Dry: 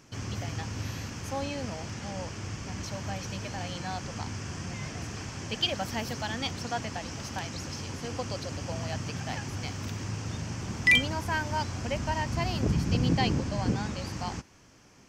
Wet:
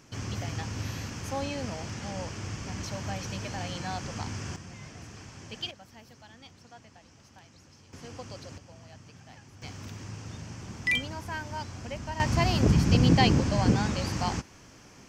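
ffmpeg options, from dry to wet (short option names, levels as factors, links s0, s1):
-af "asetnsamples=n=441:p=0,asendcmd='4.56 volume volume -8dB;5.71 volume volume -18.5dB;7.93 volume volume -8dB;8.58 volume volume -16dB;9.62 volume volume -6dB;12.2 volume volume 5dB',volume=1.06"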